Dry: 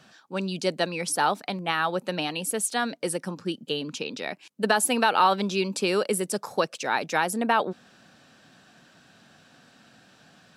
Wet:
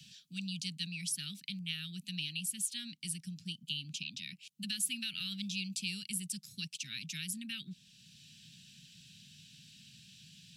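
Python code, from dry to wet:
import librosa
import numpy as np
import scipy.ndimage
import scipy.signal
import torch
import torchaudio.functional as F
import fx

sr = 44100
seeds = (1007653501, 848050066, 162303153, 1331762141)

y = scipy.signal.sosfilt(scipy.signal.ellip(3, 1.0, 60, [170.0, 2800.0], 'bandstop', fs=sr, output='sos'), x)
y = fx.band_squash(y, sr, depth_pct=40)
y = F.gain(torch.from_numpy(y), -5.0).numpy()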